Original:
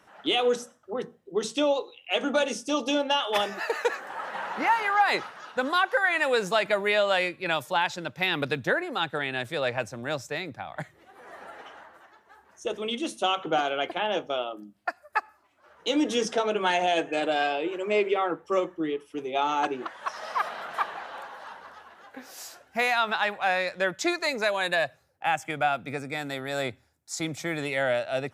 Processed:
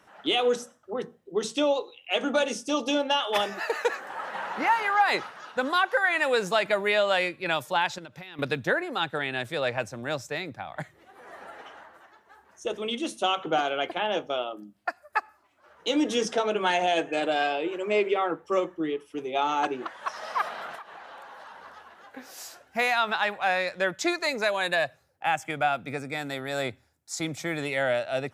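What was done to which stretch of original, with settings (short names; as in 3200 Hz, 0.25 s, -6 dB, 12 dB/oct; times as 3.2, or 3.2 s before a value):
7.98–8.39 compressor 16:1, threshold -38 dBFS
20.75–21.66 compressor 5:1, threshold -41 dBFS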